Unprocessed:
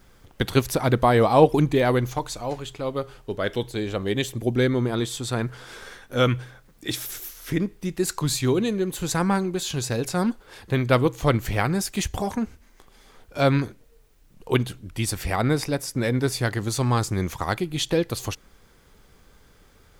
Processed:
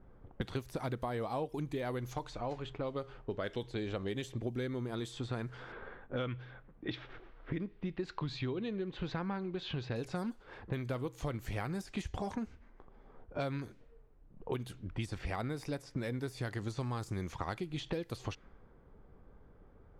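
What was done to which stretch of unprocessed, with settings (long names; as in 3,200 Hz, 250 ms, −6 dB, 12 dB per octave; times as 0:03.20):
0:05.72–0:09.96: low-pass filter 3,900 Hz 24 dB per octave
whole clip: de-essing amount 70%; low-pass that shuts in the quiet parts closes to 830 Hz, open at −20 dBFS; downward compressor 10 to 1, threshold −31 dBFS; level −3 dB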